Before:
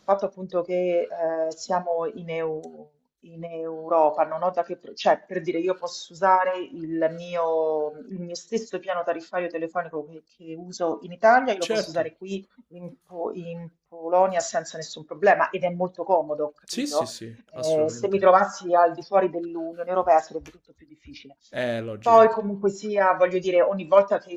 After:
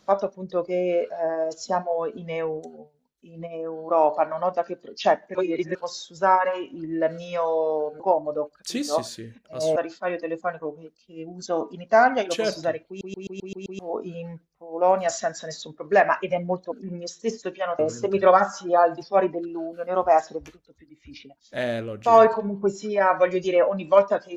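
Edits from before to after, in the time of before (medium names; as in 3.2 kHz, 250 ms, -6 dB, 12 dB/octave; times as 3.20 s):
5.35–5.75 s: reverse
8.00–9.07 s: swap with 16.03–17.79 s
12.19 s: stutter in place 0.13 s, 7 plays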